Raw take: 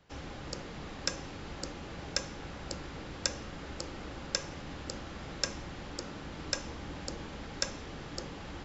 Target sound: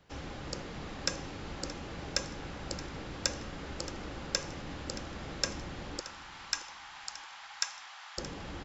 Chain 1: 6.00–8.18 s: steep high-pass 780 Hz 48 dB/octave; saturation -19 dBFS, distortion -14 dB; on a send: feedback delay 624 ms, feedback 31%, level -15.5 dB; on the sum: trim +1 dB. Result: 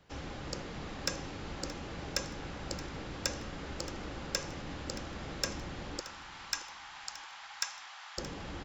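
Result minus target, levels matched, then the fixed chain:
saturation: distortion +15 dB
6.00–8.18 s: steep high-pass 780 Hz 48 dB/octave; saturation -8 dBFS, distortion -29 dB; on a send: feedback delay 624 ms, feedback 31%, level -15.5 dB; on the sum: trim +1 dB

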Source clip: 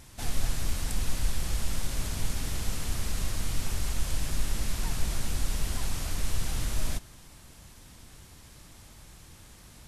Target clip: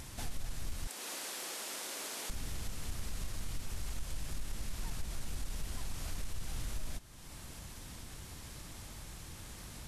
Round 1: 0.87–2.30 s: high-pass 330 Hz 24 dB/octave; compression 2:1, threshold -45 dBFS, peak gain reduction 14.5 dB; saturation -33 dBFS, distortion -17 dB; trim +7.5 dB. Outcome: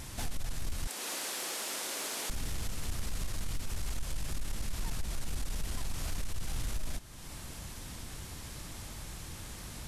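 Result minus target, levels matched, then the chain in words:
compression: peak gain reduction -5 dB
0.87–2.30 s: high-pass 330 Hz 24 dB/octave; compression 2:1, threshold -55 dBFS, peak gain reduction 19.5 dB; saturation -33 dBFS, distortion -25 dB; trim +7.5 dB

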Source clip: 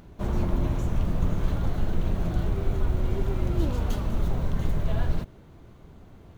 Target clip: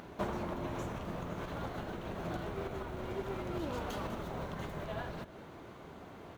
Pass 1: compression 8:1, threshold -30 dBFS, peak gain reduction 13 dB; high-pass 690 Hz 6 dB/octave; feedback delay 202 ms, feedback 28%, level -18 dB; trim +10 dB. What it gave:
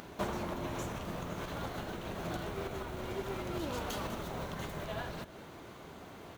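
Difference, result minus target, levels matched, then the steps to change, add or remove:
8 kHz band +7.0 dB
add after high-pass: treble shelf 3.1 kHz -9 dB

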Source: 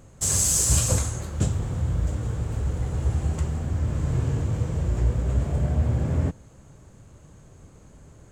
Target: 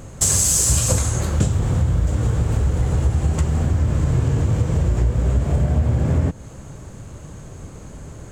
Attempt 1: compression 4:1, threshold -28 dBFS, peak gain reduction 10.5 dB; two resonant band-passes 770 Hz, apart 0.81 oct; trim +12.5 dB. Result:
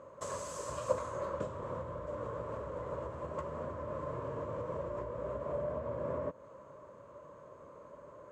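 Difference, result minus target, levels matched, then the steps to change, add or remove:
1 kHz band +14.0 dB
remove: two resonant band-passes 770 Hz, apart 0.81 oct

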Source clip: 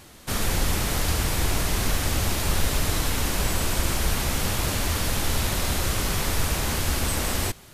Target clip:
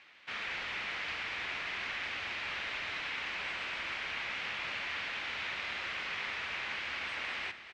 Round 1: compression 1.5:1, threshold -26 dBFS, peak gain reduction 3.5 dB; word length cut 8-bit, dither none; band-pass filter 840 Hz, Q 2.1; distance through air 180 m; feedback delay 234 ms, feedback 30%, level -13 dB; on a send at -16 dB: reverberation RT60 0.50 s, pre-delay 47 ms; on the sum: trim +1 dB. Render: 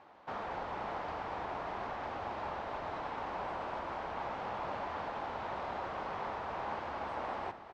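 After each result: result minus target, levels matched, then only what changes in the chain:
1 kHz band +10.5 dB; compression: peak gain reduction +3.5 dB
change: band-pass filter 2.3 kHz, Q 2.1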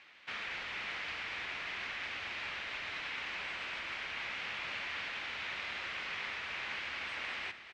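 compression: peak gain reduction +3.5 dB
remove: compression 1.5:1, threshold -26 dBFS, peak gain reduction 3.5 dB

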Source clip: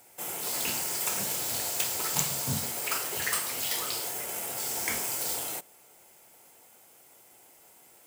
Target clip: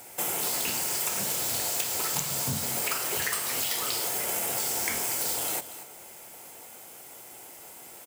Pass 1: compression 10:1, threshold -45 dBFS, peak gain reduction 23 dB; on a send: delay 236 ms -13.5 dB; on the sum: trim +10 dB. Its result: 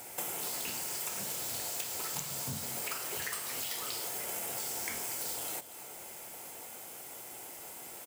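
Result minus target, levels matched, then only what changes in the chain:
compression: peak gain reduction +8 dB
change: compression 10:1, threshold -36 dBFS, peak gain reduction 15 dB

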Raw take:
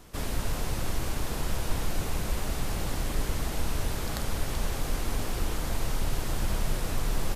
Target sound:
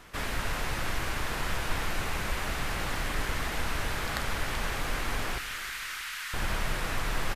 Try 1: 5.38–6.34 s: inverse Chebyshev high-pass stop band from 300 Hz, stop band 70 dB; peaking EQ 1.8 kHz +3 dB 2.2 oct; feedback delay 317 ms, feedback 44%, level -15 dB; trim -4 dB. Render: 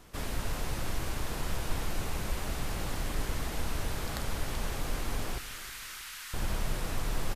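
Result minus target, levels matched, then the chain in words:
2 kHz band -5.0 dB
5.38–6.34 s: inverse Chebyshev high-pass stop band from 300 Hz, stop band 70 dB; peaking EQ 1.8 kHz +12.5 dB 2.2 oct; feedback delay 317 ms, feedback 44%, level -15 dB; trim -4 dB

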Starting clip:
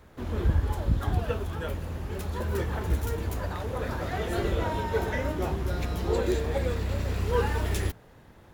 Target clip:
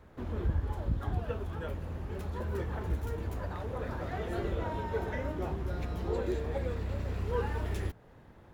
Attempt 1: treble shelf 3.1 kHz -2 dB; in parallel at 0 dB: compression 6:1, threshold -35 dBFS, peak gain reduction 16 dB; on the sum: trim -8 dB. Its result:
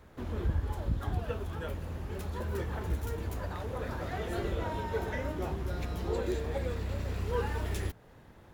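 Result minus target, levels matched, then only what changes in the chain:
8 kHz band +6.0 dB
change: treble shelf 3.1 kHz -9.5 dB

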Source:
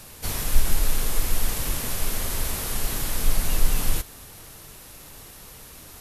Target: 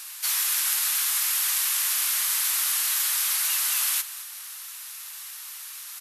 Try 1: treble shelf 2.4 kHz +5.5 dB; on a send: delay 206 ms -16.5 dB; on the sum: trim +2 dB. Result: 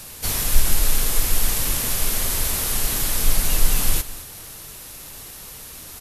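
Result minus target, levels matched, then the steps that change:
1 kHz band +3.5 dB
add first: high-pass 1.1 kHz 24 dB/octave

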